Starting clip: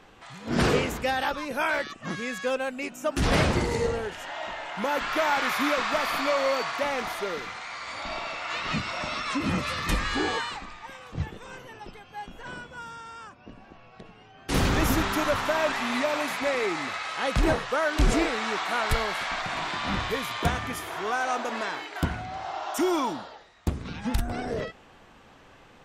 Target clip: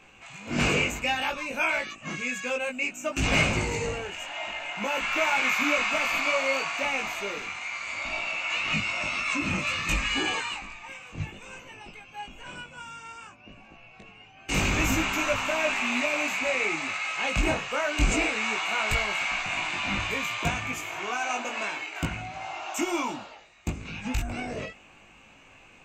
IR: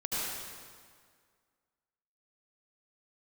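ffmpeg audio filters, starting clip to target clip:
-af "flanger=delay=18.5:depth=2.1:speed=0.59,superequalizer=7b=0.708:12b=3.55:15b=2.51:16b=0.355"

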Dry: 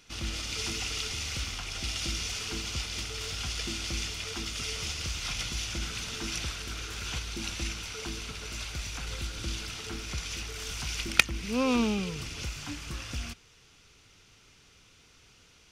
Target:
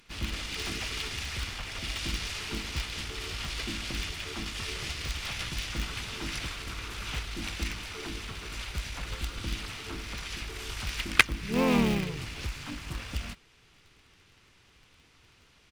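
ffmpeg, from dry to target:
ffmpeg -i in.wav -filter_complex "[0:a]equalizer=frequency=6100:width_type=o:width=0.61:gain=-6.5,asplit=3[link_01][link_02][link_03];[link_02]asetrate=29433,aresample=44100,atempo=1.49831,volume=-8dB[link_04];[link_03]asetrate=37084,aresample=44100,atempo=1.18921,volume=-3dB[link_05];[link_01][link_04][link_05]amix=inputs=3:normalize=0,asplit=2[link_06][link_07];[link_07]acrusher=bits=5:dc=4:mix=0:aa=0.000001,volume=-9.5dB[link_08];[link_06][link_08]amix=inputs=2:normalize=0,volume=-3dB" out.wav

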